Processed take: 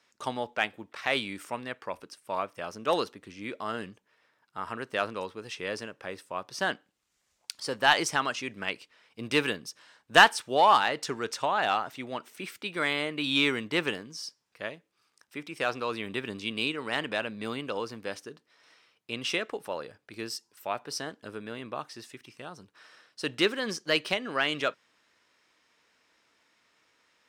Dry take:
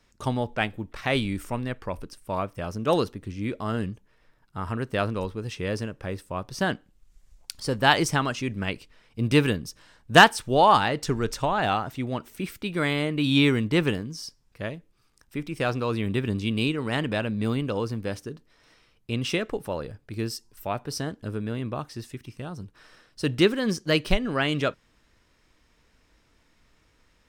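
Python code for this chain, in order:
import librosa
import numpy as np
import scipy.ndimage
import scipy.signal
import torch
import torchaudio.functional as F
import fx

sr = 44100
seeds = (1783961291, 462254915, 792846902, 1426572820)

p1 = fx.weighting(x, sr, curve='A')
p2 = np.clip(p1, -10.0 ** (-15.0 / 20.0), 10.0 ** (-15.0 / 20.0))
p3 = p1 + (p2 * 10.0 ** (-4.0 / 20.0))
y = p3 * 10.0 ** (-5.5 / 20.0)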